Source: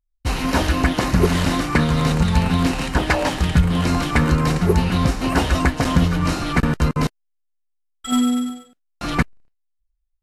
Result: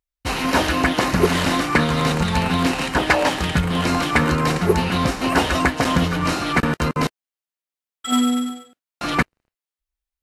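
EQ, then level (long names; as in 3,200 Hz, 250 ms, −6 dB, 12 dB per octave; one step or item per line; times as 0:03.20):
high-pass filter 100 Hz 6 dB per octave
bass and treble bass −5 dB, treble −7 dB
high-shelf EQ 3,800 Hz +6.5 dB
+2.5 dB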